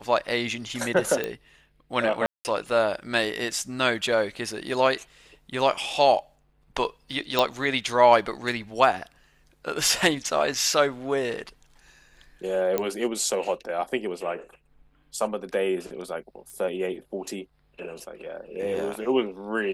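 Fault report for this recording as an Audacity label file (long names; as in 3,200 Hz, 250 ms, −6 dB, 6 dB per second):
1.240000	1.240000	click −14 dBFS
2.260000	2.450000	drop-out 189 ms
7.390000	7.390000	click
12.780000	12.780000	click −11 dBFS
16.500000	16.500000	click −30 dBFS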